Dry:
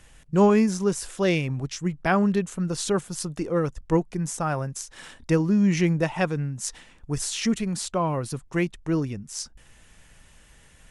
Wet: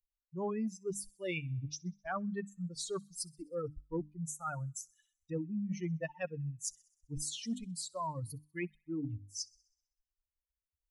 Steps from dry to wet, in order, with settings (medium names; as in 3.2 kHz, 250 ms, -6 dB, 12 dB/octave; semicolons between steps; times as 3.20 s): expander on every frequency bin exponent 3; hum notches 50/100/150/200/250/300 Hz; reverse; compression 5:1, threshold -39 dBFS, peak gain reduction 19.5 dB; reverse; feedback echo behind a high-pass 64 ms, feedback 57%, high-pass 3.1 kHz, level -24 dB; trim +3 dB